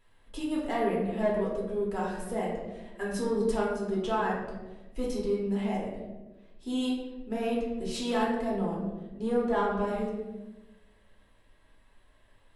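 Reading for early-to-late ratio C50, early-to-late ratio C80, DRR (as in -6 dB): 2.5 dB, 4.5 dB, -5.5 dB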